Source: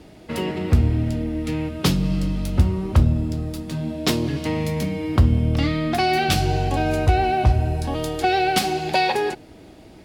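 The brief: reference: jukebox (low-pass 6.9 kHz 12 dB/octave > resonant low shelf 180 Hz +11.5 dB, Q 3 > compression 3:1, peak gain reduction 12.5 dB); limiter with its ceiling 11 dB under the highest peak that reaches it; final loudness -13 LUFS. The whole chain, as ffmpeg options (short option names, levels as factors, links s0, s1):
-af "alimiter=limit=0.168:level=0:latency=1,lowpass=6900,lowshelf=f=180:t=q:w=3:g=11.5,acompressor=threshold=0.1:ratio=3,volume=2.99"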